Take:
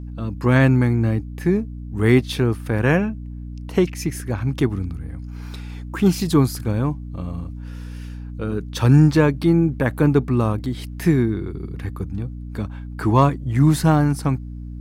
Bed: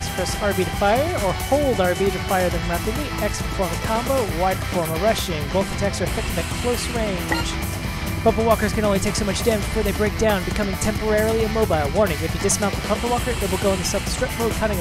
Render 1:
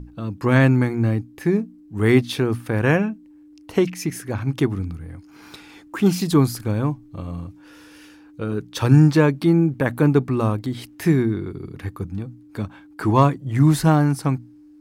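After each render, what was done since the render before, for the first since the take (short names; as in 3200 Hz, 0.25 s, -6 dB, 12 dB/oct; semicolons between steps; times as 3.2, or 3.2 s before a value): notches 60/120/180/240 Hz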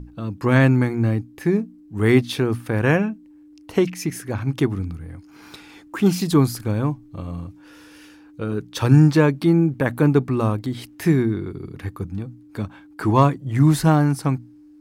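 nothing audible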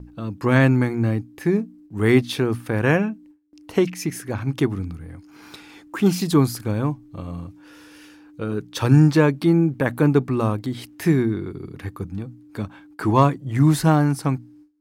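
gate with hold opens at -43 dBFS; low shelf 74 Hz -5.5 dB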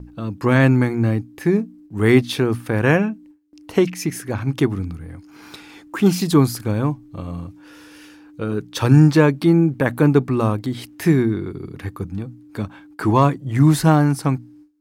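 gain +2.5 dB; limiter -2 dBFS, peak gain reduction 2.5 dB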